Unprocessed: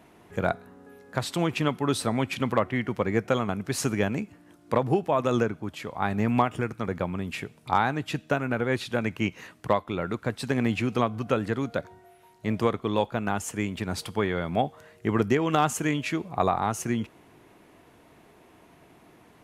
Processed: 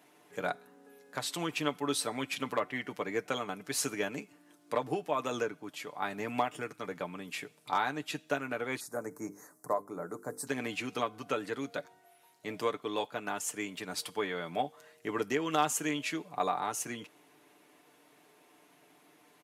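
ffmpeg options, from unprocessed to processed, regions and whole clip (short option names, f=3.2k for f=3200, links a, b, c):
-filter_complex "[0:a]asettb=1/sr,asplit=3[a][b][c];[a]atrim=end=8.804[d];[b]atrim=start=8.8:end=10.47,asetpts=PTS-STARTPTS,afade=t=in:d=0.004:c=qsin,afade=t=out:st=1.666:d=0.004:c=qsin,asuperstop=centerf=3000:order=4:qfactor=0.53,highshelf=f=5k:g=6.5,bandreject=f=50:t=h:w=6,bandreject=f=100:t=h:w=6,bandreject=f=150:t=h:w=6,bandreject=f=200:t=h:w=6,bandreject=f=250:t=h:w=6,bandreject=f=300:t=h:w=6,bandreject=f=350:t=h:w=6,bandreject=f=400:t=h:w=6,bandreject=f=450:t=h:w=6,bandreject=f=500:t=h:w=6[e];[c]atrim=start=10.466[f];[d][e]acrossfade=d=0.004:c1=hsin:c2=qsin[g];[g][f]acrossfade=d=0.004:c1=qsin:c2=hsin,highpass=250,highshelf=f=2.8k:g=8,aecho=1:1:6.8:0.54,volume=-8.5dB"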